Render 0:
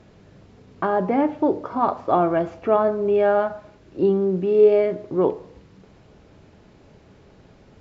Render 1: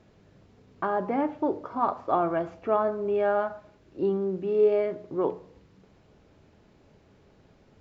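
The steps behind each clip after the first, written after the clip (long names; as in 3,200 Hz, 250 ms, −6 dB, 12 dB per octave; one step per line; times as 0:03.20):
mains-hum notches 60/120/180 Hz
dynamic equaliser 1,200 Hz, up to +4 dB, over −32 dBFS, Q 1.2
level −7.5 dB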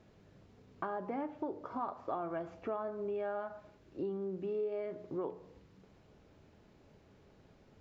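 downward compressor 4 to 1, threshold −32 dBFS, peak gain reduction 13 dB
level −4 dB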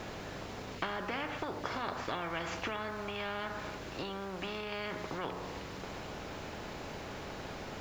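every bin compressed towards the loudest bin 4 to 1
level +3.5 dB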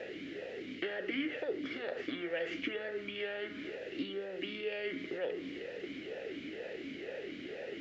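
formant filter swept between two vowels e-i 2.1 Hz
level +11.5 dB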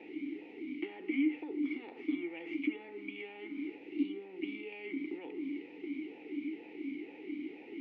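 formant filter u
level +9.5 dB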